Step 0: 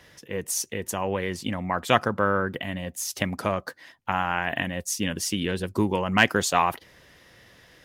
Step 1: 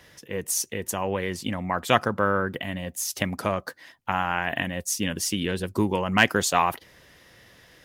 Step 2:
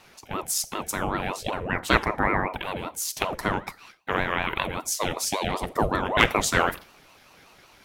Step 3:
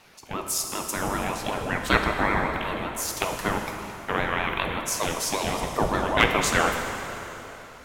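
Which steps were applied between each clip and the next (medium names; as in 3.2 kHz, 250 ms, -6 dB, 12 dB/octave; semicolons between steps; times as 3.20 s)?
treble shelf 8.9 kHz +4 dB
Schroeder reverb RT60 0.37 s, combs from 28 ms, DRR 15 dB; ring modulator with a swept carrier 550 Hz, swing 55%, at 5.2 Hz; trim +2.5 dB
plate-style reverb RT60 3.4 s, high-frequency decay 0.85×, DRR 3.5 dB; trim -1 dB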